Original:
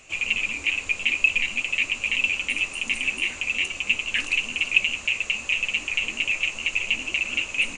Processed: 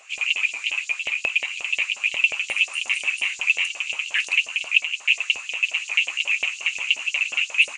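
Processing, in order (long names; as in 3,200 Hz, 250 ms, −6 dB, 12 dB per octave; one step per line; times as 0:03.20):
speech leveller 0.5 s
auto-filter high-pass saw up 5.6 Hz 570–6,200 Hz
0:04.85–0:05.75: multiband upward and downward expander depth 40%
level −1 dB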